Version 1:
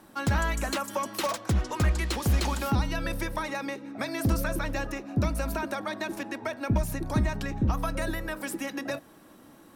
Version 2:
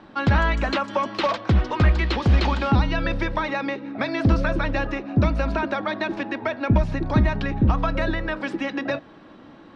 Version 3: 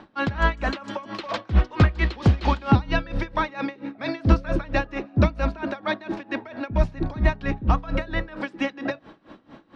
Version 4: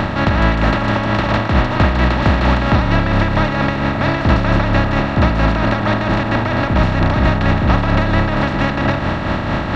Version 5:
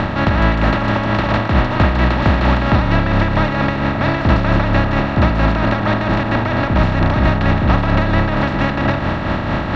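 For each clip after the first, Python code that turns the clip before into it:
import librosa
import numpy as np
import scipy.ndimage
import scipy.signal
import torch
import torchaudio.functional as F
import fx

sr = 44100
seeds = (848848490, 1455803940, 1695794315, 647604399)

y1 = scipy.signal.sosfilt(scipy.signal.butter(4, 4100.0, 'lowpass', fs=sr, output='sos'), x)
y1 = y1 * librosa.db_to_amplitude(7.0)
y2 = y1 * 10.0 ** (-21 * (0.5 - 0.5 * np.cos(2.0 * np.pi * 4.4 * np.arange(len(y1)) / sr)) / 20.0)
y2 = y2 * librosa.db_to_amplitude(3.5)
y3 = fx.bin_compress(y2, sr, power=0.2)
y3 = y3 * librosa.db_to_amplitude(-2.0)
y4 = fx.air_absorb(y3, sr, metres=57.0)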